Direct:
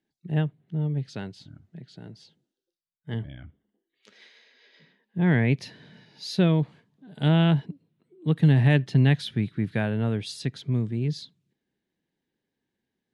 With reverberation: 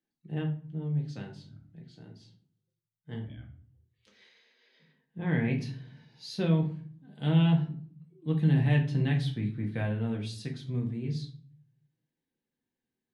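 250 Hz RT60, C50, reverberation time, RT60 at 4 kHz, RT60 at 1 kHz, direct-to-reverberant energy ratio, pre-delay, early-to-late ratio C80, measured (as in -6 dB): 0.75 s, 10.0 dB, 0.50 s, 0.30 s, 0.45 s, -0.5 dB, 4 ms, 14.5 dB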